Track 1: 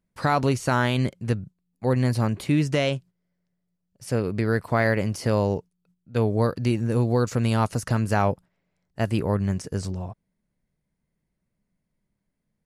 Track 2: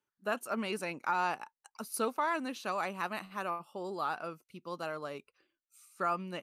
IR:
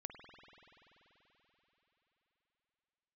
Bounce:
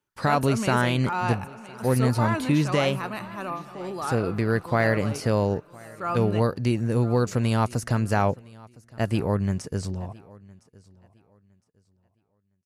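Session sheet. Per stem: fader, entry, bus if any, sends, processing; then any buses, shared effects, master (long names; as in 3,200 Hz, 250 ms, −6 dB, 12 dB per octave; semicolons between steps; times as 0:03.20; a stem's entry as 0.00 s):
−0.5 dB, 0.00 s, no send, echo send −23.5 dB, downward expander −50 dBFS
+1.5 dB, 0.00 s, send −3.5 dB, echo send −13 dB, low-shelf EQ 170 Hz +12 dB; transient designer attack −6 dB, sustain +1 dB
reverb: on, RT60 4.3 s, pre-delay 48 ms
echo: repeating echo 1,011 ms, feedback 25%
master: no processing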